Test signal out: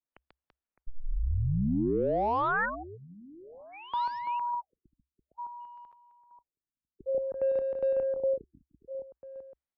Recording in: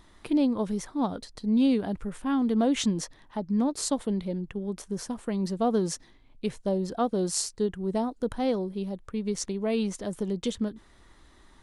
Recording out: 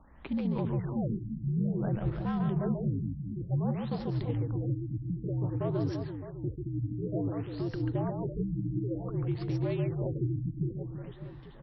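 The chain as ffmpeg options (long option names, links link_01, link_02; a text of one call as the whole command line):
ffmpeg -i in.wav -filter_complex "[0:a]acrossover=split=3600[link_01][link_02];[link_02]acompressor=threshold=-37dB:ratio=4:attack=1:release=60[link_03];[link_01][link_03]amix=inputs=2:normalize=0,alimiter=level_in=1.5dB:limit=-24dB:level=0:latency=1:release=15,volume=-1.5dB,afreqshift=-69,aecho=1:1:140|336|610.4|994.6|1532:0.631|0.398|0.251|0.158|0.1,adynamicsmooth=sensitivity=7:basefreq=2200,afftfilt=real='re*lt(b*sr/1024,300*pow(5900/300,0.5+0.5*sin(2*PI*0.55*pts/sr)))':imag='im*lt(b*sr/1024,300*pow(5900/300,0.5+0.5*sin(2*PI*0.55*pts/sr)))':win_size=1024:overlap=0.75" out.wav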